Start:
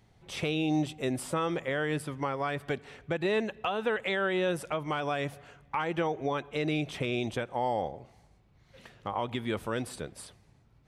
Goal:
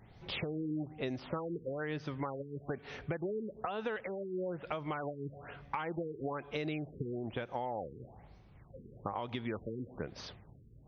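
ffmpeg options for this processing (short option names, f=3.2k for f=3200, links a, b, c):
-af "acompressor=threshold=-40dB:ratio=6,afftfilt=real='re*lt(b*sr/1024,470*pow(6600/470,0.5+0.5*sin(2*PI*1.1*pts/sr)))':imag='im*lt(b*sr/1024,470*pow(6600/470,0.5+0.5*sin(2*PI*1.1*pts/sr)))':win_size=1024:overlap=0.75,volume=5dB"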